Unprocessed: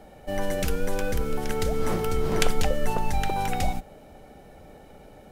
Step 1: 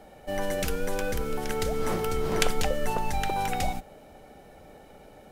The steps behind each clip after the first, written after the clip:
low-shelf EQ 260 Hz −5 dB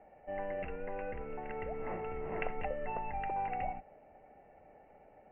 Chebyshev low-pass with heavy ripple 2,800 Hz, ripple 9 dB
level −5.5 dB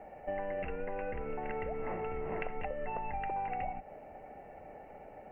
downward compressor, threshold −43 dBFS, peak gain reduction 12 dB
level +9 dB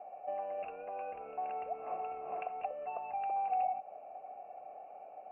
formant filter a
level +7 dB

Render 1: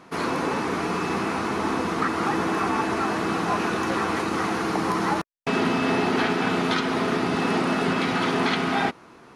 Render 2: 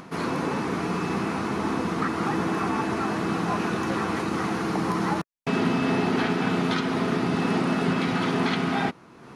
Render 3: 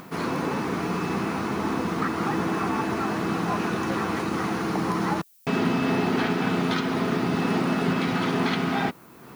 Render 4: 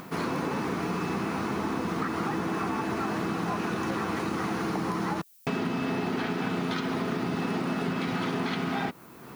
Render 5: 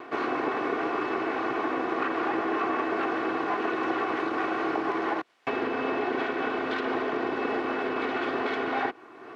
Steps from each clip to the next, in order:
parametric band 150 Hz +7 dB 1.6 octaves; upward compression, threshold −33 dBFS; level −3.5 dB
background noise violet −57 dBFS
downward compressor, threshold −26 dBFS, peak gain reduction 7.5 dB
lower of the sound and its delayed copy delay 2.7 ms; band-pass filter 290–2,400 Hz; level +5 dB

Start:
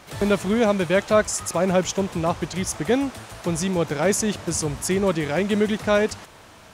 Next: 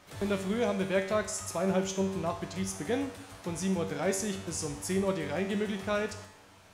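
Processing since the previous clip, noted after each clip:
tuned comb filter 96 Hz, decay 0.64 s, harmonics all, mix 80%
convolution reverb RT60 0.90 s, pre-delay 41 ms, DRR 15 dB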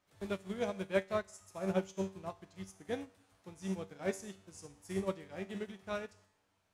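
expander for the loud parts 2.5 to 1, over −37 dBFS
level −1.5 dB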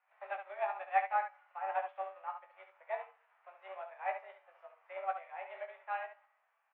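on a send: ambience of single reflections 19 ms −8.5 dB, 70 ms −8 dB
on the sum: single-sideband voice off tune +190 Hz 450–2,300 Hz
level +1.5 dB

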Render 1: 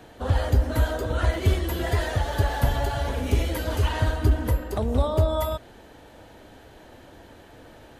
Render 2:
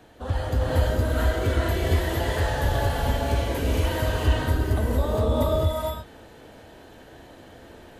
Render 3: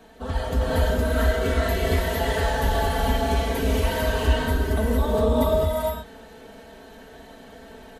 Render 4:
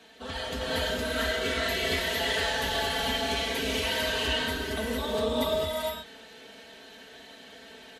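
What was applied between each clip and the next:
reverb whose tail is shaped and stops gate 480 ms rising, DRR −4.5 dB; level −4.5 dB
comb filter 4.5 ms, depth 84%
meter weighting curve D; level −6 dB

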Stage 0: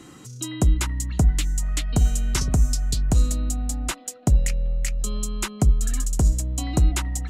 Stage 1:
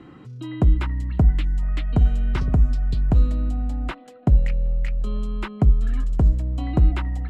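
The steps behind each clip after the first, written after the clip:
high-frequency loss of the air 440 metres
level +2 dB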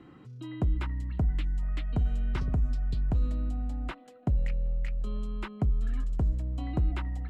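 brickwall limiter −12 dBFS, peak gain reduction 5 dB
level −7.5 dB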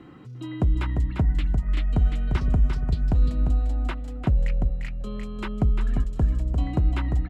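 single-tap delay 348 ms −6 dB
level +5.5 dB

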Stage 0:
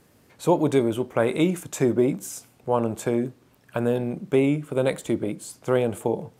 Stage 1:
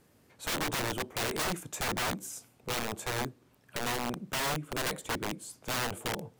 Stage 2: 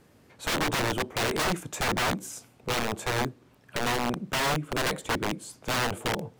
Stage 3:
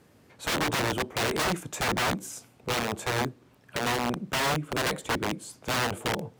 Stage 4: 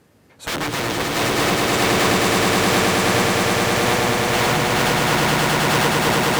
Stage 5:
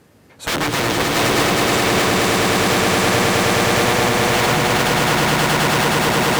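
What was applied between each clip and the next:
wrap-around overflow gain 20.5 dB; level −6 dB
high-shelf EQ 7,400 Hz −8 dB; level +6 dB
high-pass filter 42 Hz
echo that builds up and dies away 105 ms, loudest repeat 8, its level −3 dB; level +3 dB
brickwall limiter −11 dBFS, peak gain reduction 5.5 dB; level +4 dB

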